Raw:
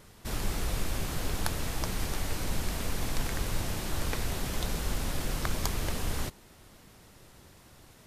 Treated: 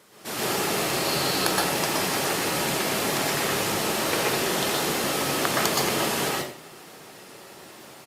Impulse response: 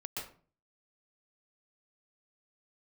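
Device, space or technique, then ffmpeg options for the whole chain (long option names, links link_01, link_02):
far-field microphone of a smart speaker: -filter_complex "[0:a]highpass=270,asettb=1/sr,asplit=3[link_01][link_02][link_03];[link_01]atrim=end=0.934[link_04];[link_02]atrim=start=0.93:end=1.38,asetpts=PTS-STARTPTS,afade=type=in:duration=0.004:curve=qsin,afade=type=out:start_time=0.446:duration=0.004:curve=qsin,equalizer=frequency=4300:width_type=o:width=0.24:gain=10.5[link_05];[link_03]atrim=start=1.376[link_06];[link_04][link_05]acrossfade=duration=0.004:curve1=hsin:curve2=qsin[link_07];[link_07][link_06]acrossfade=duration=0.004:curve1=qsin:curve2=hsin,aecho=1:1:87:0.251[link_08];[1:a]atrim=start_sample=2205[link_09];[link_08][link_09]afir=irnorm=-1:irlink=0,highpass=frequency=86:width=0.5412,highpass=frequency=86:width=1.3066,dynaudnorm=framelen=160:gausssize=3:maxgain=6dB,volume=6.5dB" -ar 48000 -c:a libopus -b:a 48k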